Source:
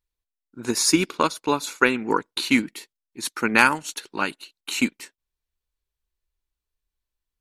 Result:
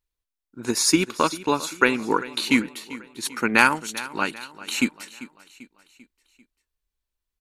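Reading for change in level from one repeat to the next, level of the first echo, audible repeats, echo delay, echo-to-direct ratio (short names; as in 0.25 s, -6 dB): -6.0 dB, -17.0 dB, 3, 0.393 s, -16.0 dB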